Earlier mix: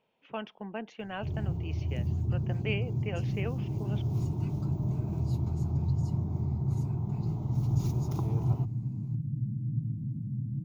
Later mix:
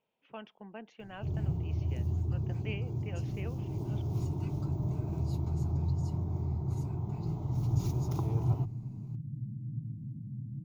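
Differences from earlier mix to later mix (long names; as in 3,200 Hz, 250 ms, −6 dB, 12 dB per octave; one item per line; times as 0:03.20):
speech −8.0 dB
second sound −6.5 dB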